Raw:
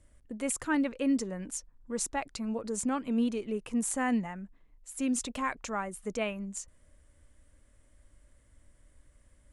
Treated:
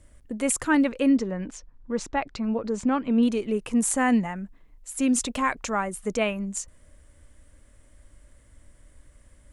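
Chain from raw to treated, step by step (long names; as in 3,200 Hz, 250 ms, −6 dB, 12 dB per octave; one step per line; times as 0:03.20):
0:01.09–0:03.23: high-frequency loss of the air 150 metres
level +7.5 dB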